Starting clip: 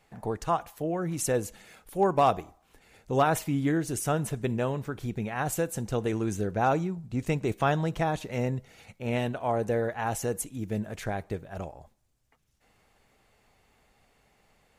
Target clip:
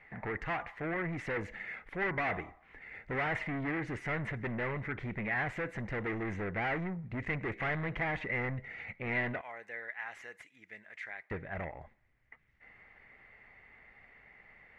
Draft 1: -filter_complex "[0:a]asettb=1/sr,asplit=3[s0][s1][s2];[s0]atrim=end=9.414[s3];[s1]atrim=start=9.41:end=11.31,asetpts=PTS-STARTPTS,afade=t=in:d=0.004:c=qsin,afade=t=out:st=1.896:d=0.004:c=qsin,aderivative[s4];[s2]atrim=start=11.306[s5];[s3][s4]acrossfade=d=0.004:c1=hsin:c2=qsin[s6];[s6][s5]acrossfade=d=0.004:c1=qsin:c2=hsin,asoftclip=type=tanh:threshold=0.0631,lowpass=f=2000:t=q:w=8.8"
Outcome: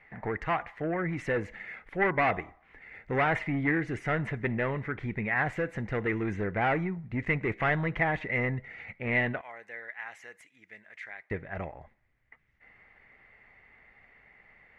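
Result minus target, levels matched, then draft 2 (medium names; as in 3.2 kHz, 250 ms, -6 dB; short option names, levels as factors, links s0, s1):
saturation: distortion -7 dB
-filter_complex "[0:a]asettb=1/sr,asplit=3[s0][s1][s2];[s0]atrim=end=9.414[s3];[s1]atrim=start=9.41:end=11.31,asetpts=PTS-STARTPTS,afade=t=in:d=0.004:c=qsin,afade=t=out:st=1.896:d=0.004:c=qsin,aderivative[s4];[s2]atrim=start=11.306[s5];[s3][s4]acrossfade=d=0.004:c1=hsin:c2=qsin[s6];[s6][s5]acrossfade=d=0.004:c1=qsin:c2=hsin,asoftclip=type=tanh:threshold=0.0188,lowpass=f=2000:t=q:w=8.8"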